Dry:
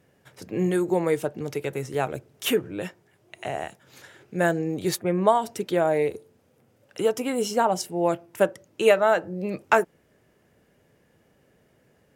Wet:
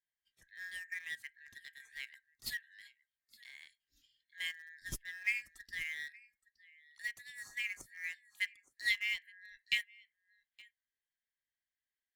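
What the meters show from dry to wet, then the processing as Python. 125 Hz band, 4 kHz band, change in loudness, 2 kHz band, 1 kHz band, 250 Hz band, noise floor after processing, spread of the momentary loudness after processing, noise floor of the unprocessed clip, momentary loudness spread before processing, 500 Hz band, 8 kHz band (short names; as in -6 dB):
-29.0 dB, -6.0 dB, -14.5 dB, -5.5 dB, under -40 dB, -39.5 dB, under -85 dBFS, 19 LU, -64 dBFS, 13 LU, under -40 dB, -14.5 dB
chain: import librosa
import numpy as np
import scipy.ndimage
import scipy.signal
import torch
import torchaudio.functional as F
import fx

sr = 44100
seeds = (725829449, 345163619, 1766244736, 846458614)

p1 = fx.band_shuffle(x, sr, order='4123')
p2 = fx.tone_stack(p1, sr, knobs='10-0-1')
p3 = p2 + fx.echo_single(p2, sr, ms=869, db=-16.0, dry=0)
p4 = fx.noise_reduce_blind(p3, sr, reduce_db=11)
p5 = np.where(np.abs(p4) >= 10.0 ** (-46.0 / 20.0), p4, 0.0)
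p6 = p4 + (p5 * 10.0 ** (-9.0 / 20.0))
p7 = fx.upward_expand(p6, sr, threshold_db=-52.0, expansion=1.5)
y = p7 * 10.0 ** (8.0 / 20.0)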